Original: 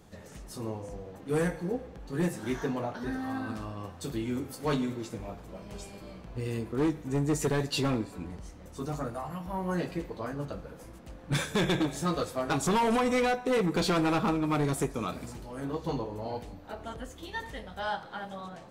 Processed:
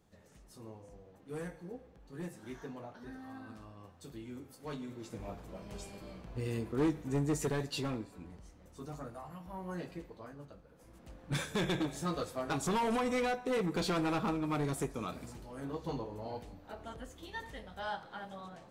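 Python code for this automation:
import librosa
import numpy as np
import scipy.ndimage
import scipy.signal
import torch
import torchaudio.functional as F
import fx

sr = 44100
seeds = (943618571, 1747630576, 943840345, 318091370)

y = fx.gain(x, sr, db=fx.line((4.79, -13.5), (5.28, -3.0), (7.09, -3.0), (8.12, -10.0), (9.93, -10.0), (10.67, -17.0), (11.04, -6.0)))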